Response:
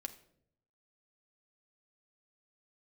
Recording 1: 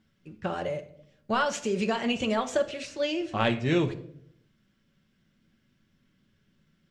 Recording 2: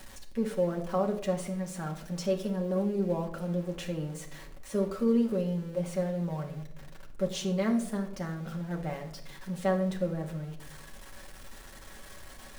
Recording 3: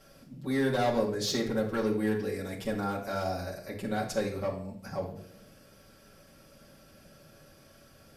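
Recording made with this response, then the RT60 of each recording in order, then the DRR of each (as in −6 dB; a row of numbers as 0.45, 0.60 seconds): 1; 0.70, 0.70, 0.65 seconds; 5.5, 0.5, −5.0 decibels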